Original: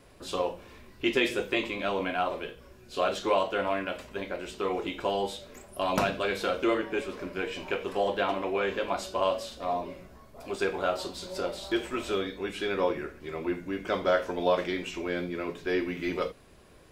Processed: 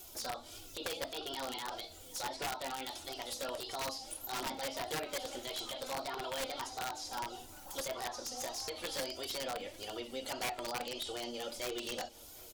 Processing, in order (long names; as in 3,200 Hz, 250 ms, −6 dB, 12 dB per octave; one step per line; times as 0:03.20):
first-order pre-emphasis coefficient 0.9
treble cut that deepens with the level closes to 1,700 Hz, closed at −39 dBFS
parametric band 1,400 Hz −10 dB 0.88 octaves
in parallel at +3 dB: downward compressor 12 to 1, threshold −56 dBFS, peak gain reduction 17 dB
on the sum: brickwall limiter −36 dBFS, peak gain reduction 9 dB
flanger 1.2 Hz, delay 3.5 ms, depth 1.8 ms, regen +18%
wrap-around overflow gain 41.5 dB
single-tap delay 1,018 ms −22 dB
wrong playback speed 33 rpm record played at 45 rpm
one half of a high-frequency compander encoder only
level +11 dB